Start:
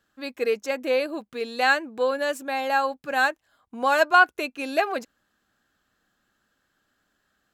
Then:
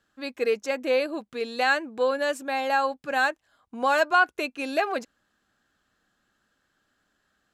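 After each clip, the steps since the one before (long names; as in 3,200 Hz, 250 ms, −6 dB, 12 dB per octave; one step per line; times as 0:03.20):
low-pass filter 11,000 Hz 12 dB per octave
in parallel at +2.5 dB: brickwall limiter −14.5 dBFS, peak gain reduction 9 dB
on the sum: level −7.5 dB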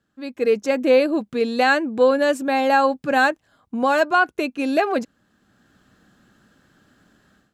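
parametric band 160 Hz +12 dB 2.8 octaves
automatic gain control gain up to 15.5 dB
level −5 dB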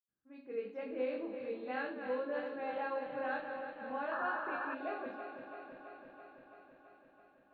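feedback delay that plays each chunk backwards 166 ms, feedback 84%, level −8.5 dB
convolution reverb, pre-delay 78 ms
sound drawn into the spectrogram noise, 0:04.11–0:04.75, 800–1,800 Hz −46 dBFS
level +5 dB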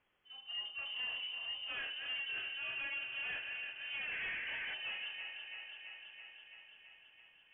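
soft clipping −38 dBFS, distortion −11 dB
bit-depth reduction 12 bits, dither triangular
voice inversion scrambler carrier 3,300 Hz
level +1 dB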